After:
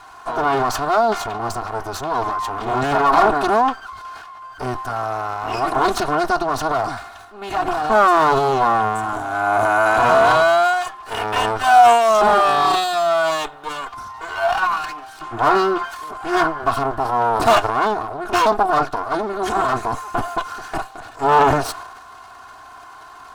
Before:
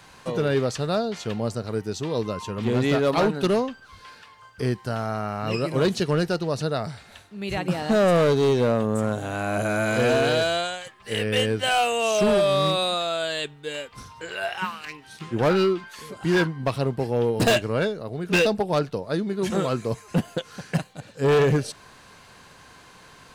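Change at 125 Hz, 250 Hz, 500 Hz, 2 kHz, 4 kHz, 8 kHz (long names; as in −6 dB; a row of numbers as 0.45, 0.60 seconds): −5.5, −2.0, +3.0, +6.5, +0.5, +3.0 decibels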